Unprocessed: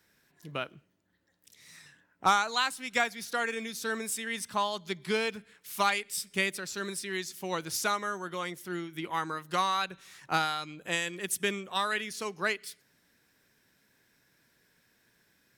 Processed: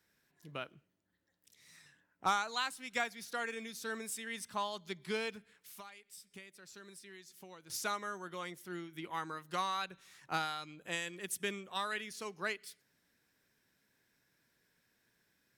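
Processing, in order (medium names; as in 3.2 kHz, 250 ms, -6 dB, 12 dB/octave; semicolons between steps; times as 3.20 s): 5.38–7.70 s: compression 5:1, threshold -44 dBFS, peak gain reduction 19.5 dB; trim -7.5 dB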